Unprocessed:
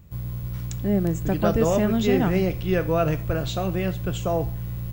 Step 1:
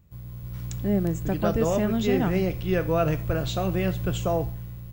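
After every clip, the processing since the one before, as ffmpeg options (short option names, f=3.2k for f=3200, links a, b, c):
-af "dynaudnorm=f=130:g=9:m=11.5dB,volume=-9dB"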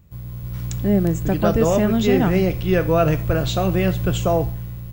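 -af "aeval=exprs='0.316*(cos(1*acos(clip(val(0)/0.316,-1,1)))-cos(1*PI/2))+0.00708*(cos(3*acos(clip(val(0)/0.316,-1,1)))-cos(3*PI/2))':c=same,acontrast=81"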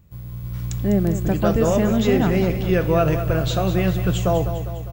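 -af "aecho=1:1:201|402|603|804|1005|1206:0.299|0.158|0.0839|0.0444|0.0236|0.0125,volume=-1.5dB"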